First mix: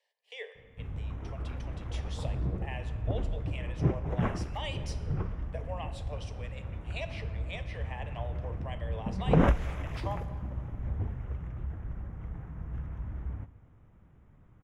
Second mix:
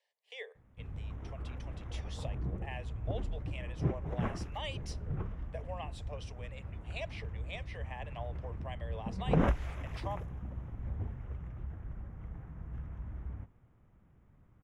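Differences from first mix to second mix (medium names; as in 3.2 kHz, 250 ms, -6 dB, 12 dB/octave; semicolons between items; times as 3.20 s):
background -4.0 dB; reverb: off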